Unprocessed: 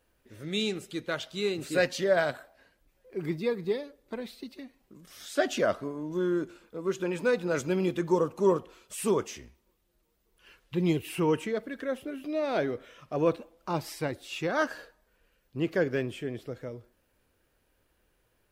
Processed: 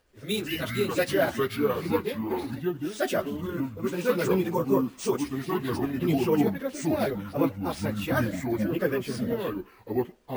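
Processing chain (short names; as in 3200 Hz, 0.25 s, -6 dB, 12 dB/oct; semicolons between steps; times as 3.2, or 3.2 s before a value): echoes that change speed 0.133 s, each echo -5 st, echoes 2; plain phase-vocoder stretch 0.56×; sample-and-hold 3×; gain +4.5 dB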